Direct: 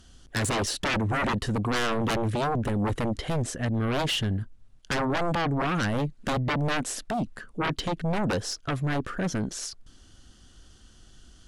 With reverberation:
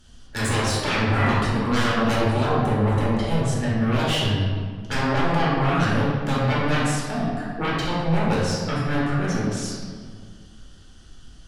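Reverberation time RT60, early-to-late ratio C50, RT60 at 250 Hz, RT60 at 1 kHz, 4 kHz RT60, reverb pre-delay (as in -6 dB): 1.8 s, -1.0 dB, 2.1 s, 1.8 s, 1.2 s, 3 ms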